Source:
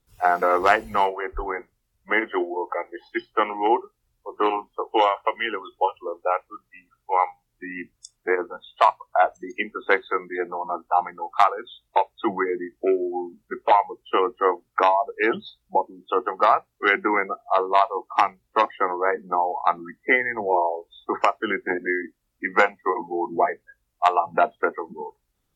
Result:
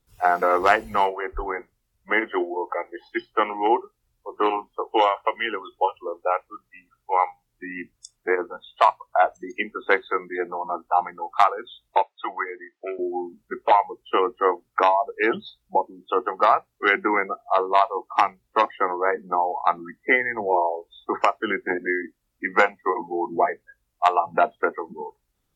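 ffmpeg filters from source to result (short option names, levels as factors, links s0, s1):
-filter_complex "[0:a]asettb=1/sr,asplit=3[s0][s1][s2];[s0]atrim=end=12.024[s3];[s1]atrim=start=12.02:end=12.99,asetpts=PTS-STARTPTS,afade=t=in:d=0.004:c=qsin,afade=t=out:st=0.966:d=0.004:c=qsin,highpass=740,lowpass=4400[s4];[s2]atrim=start=12.986[s5];[s3][s4]acrossfade=d=0.004:c1=hsin:c2=qsin[s6];[s6][s5]acrossfade=d=0.004:c1=qsin:c2=hsin"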